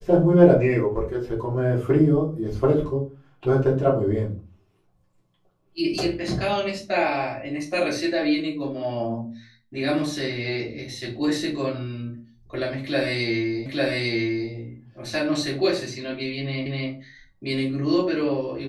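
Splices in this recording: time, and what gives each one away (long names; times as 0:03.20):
0:13.66: the same again, the last 0.85 s
0:16.66: the same again, the last 0.25 s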